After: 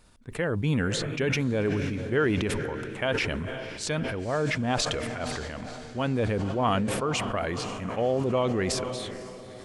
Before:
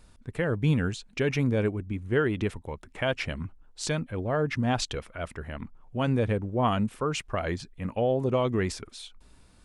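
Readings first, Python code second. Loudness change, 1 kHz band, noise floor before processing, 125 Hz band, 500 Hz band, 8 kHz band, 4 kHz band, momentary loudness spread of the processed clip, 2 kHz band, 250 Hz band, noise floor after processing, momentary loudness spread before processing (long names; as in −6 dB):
+0.5 dB, +1.5 dB, −57 dBFS, −1.0 dB, +1.0 dB, +4.5 dB, +4.0 dB, 9 LU, +3.0 dB, +0.5 dB, −43 dBFS, 13 LU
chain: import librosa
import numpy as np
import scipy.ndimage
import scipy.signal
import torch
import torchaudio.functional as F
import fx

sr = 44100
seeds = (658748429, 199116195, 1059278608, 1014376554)

y = fx.low_shelf(x, sr, hz=150.0, db=-6.5)
y = fx.echo_diffused(y, sr, ms=521, feedback_pct=58, wet_db=-14.0)
y = fx.sustainer(y, sr, db_per_s=22.0)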